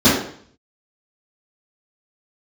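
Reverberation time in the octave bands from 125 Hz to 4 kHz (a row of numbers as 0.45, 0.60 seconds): 0.75, 0.60, 0.55, 0.55, 0.55, 0.55 seconds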